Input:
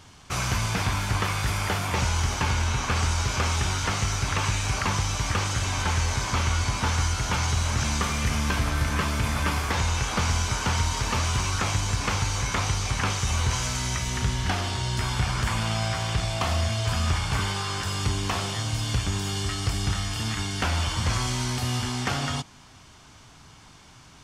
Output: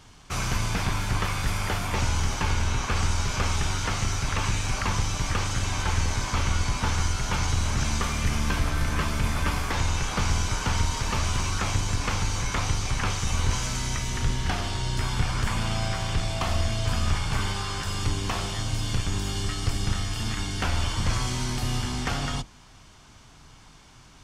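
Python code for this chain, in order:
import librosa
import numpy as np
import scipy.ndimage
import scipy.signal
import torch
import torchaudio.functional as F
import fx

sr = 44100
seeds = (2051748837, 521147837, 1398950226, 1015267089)

y = fx.octave_divider(x, sr, octaves=2, level_db=0.0)
y = y * librosa.db_to_amplitude(-2.0)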